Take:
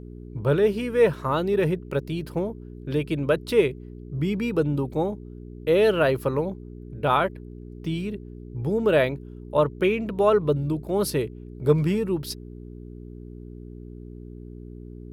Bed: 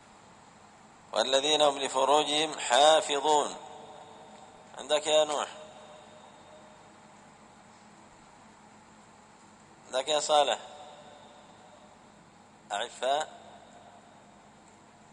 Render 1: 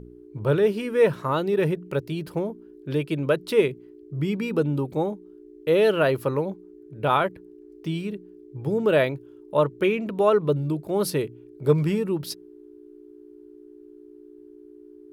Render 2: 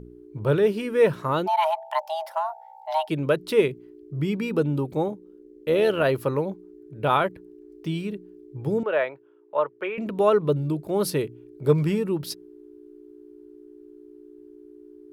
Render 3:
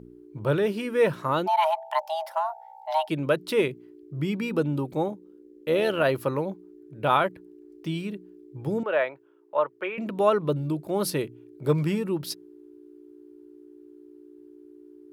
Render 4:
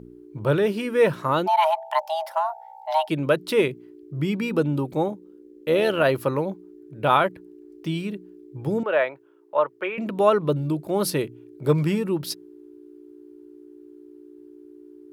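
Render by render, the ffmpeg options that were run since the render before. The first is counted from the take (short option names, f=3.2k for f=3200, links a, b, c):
-af "bandreject=f=60:t=h:w=4,bandreject=f=120:t=h:w=4,bandreject=f=180:t=h:w=4,bandreject=f=240:t=h:w=4"
-filter_complex "[0:a]asplit=3[a][b][c];[a]afade=t=out:st=1.46:d=0.02[d];[b]afreqshift=480,afade=t=in:st=1.46:d=0.02,afade=t=out:st=3.08:d=0.02[e];[c]afade=t=in:st=3.08:d=0.02[f];[d][e][f]amix=inputs=3:normalize=0,asettb=1/sr,asplit=3[g][h][i];[g]atrim=end=5.084[j];[h]atrim=start=5.08:end=6.05,asetpts=PTS-STARTPTS,afade=t=in:d=0.004:c=qsin,afade=t=out:st=0.966:d=0.004:c=qsin,tremolo=f=78:d=0.4[k];[i]atrim=start=6.046[l];[j][k]acrossfade=d=0.004:c1=hsin:c2=qsin[m];[m][l]acrossfade=d=0.004:c1=qsin:c2=hsin,asettb=1/sr,asplit=3[n][o][p];[n]atrim=end=8.834[q];[o]atrim=start=8.83:end=9.98,asetpts=PTS-STARTPTS,afade=t=in:d=0.004:c=qsin,afade=t=out:st=1.146:d=0.004:c=qsin,acrossover=split=480 2600:gain=0.0708 1 0.0631[r][s][t];[r][s][t]amix=inputs=3:normalize=0[u];[p]atrim=start=9.976[v];[q][u]acrossfade=d=0.004:c1=hsin:c2=qsin[w];[w][v]acrossfade=d=0.004:c1=qsin:c2=hsin"
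-af "highpass=f=140:p=1,equalizer=f=430:w=6.3:g=-5.5"
-af "volume=3dB"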